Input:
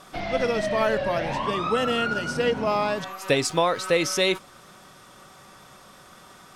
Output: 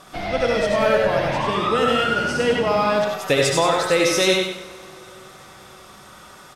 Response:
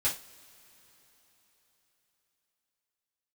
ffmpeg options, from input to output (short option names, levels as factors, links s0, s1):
-filter_complex "[0:a]aecho=1:1:96|192|288|384:0.562|0.197|0.0689|0.0241,asplit=2[s0][s1];[1:a]atrim=start_sample=2205,adelay=67[s2];[s1][s2]afir=irnorm=-1:irlink=0,volume=0.335[s3];[s0][s3]amix=inputs=2:normalize=0,volume=1.26"